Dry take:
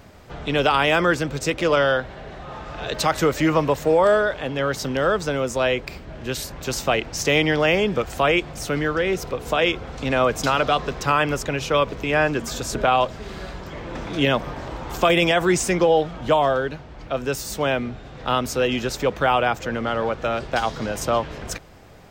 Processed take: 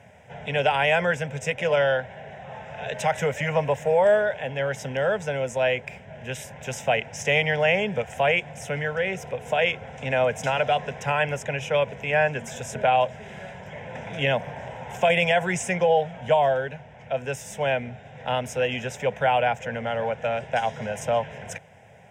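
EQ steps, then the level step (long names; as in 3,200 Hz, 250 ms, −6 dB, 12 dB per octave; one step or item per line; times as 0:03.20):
high-pass filter 100 Hz 24 dB per octave
low-pass filter 8,200 Hz 12 dB per octave
phaser with its sweep stopped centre 1,200 Hz, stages 6
0.0 dB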